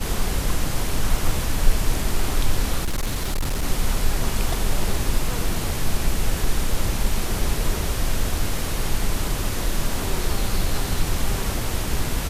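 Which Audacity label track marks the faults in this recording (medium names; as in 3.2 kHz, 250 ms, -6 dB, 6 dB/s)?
2.840000	3.640000	clipped -19 dBFS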